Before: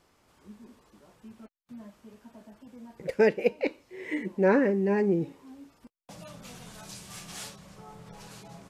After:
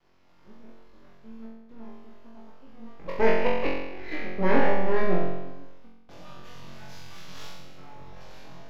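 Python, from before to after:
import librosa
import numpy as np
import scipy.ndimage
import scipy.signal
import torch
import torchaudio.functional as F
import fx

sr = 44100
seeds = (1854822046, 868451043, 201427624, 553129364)

y = np.maximum(x, 0.0)
y = np.convolve(y, np.full(5, 1.0 / 5))[:len(y)]
y = fx.room_flutter(y, sr, wall_m=3.8, rt60_s=1.0)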